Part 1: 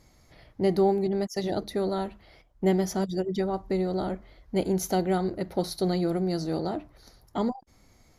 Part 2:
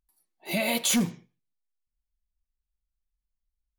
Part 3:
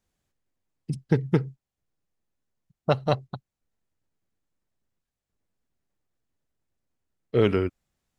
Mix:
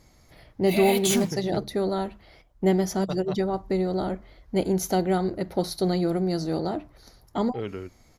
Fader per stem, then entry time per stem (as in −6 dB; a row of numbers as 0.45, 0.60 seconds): +2.0, −1.0, −12.0 decibels; 0.00, 0.20, 0.20 seconds